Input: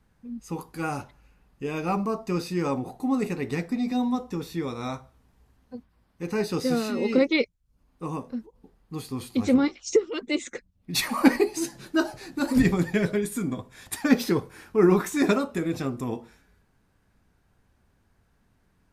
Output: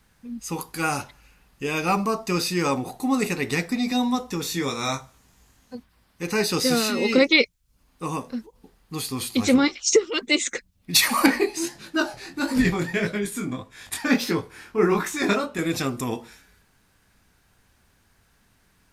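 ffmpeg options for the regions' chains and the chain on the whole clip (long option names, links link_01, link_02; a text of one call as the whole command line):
ffmpeg -i in.wav -filter_complex "[0:a]asettb=1/sr,asplit=3[link_01][link_02][link_03];[link_01]atrim=end=4.424[link_04];[link_02]atrim=start=4.42:end=5.75,asetpts=PTS-STARTPTS,afade=type=in:duration=0.004:curve=qsin,afade=type=out:start_time=1.326:duration=0.004:curve=qsin,equalizer=frequency=6800:width_type=o:width=0.37:gain=7.5,asplit=2[link_05][link_06];[link_06]adelay=22,volume=-7dB[link_07];[link_05][link_07]amix=inputs=2:normalize=0,atrim=end_sample=58653[link_08];[link_03]atrim=start=5.746[link_09];[link_04][link_08]acrossfade=duration=0.004:curve1=hsin:curve2=qsin[link_10];[link_10][link_09]acrossfade=duration=0.004:curve1=qsin:curve2=hsin,asettb=1/sr,asplit=3[link_11][link_12][link_13];[link_11]atrim=end=11.264[link_14];[link_12]atrim=start=11.26:end=15.59,asetpts=PTS-STARTPTS,afade=type=in:duration=0.004:curve=qsin,afade=type=out:start_time=4.326:duration=0.004:curve=qsin,highshelf=frequency=4700:gain=-9.5,flanger=delay=18:depth=7.2:speed=1.6[link_15];[link_13]atrim=start=15.586[link_16];[link_14][link_15]acrossfade=duration=0.004:curve1=hsin:curve2=qsin[link_17];[link_17][link_16]acrossfade=duration=0.004:curve1=qsin:curve2=hsin,tiltshelf=frequency=1400:gain=-6,alimiter=level_in=11.5dB:limit=-1dB:release=50:level=0:latency=1,volume=-4dB" out.wav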